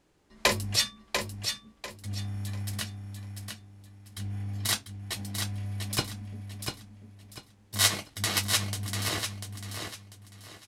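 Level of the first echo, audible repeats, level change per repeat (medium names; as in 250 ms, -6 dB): -6.0 dB, 3, -11.0 dB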